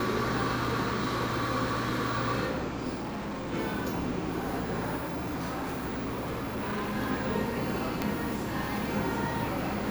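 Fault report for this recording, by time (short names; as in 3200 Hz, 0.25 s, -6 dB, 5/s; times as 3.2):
2.94–3.54 clipped -32.5 dBFS
4.96–6.96 clipped -29.5 dBFS
8.02 pop -13 dBFS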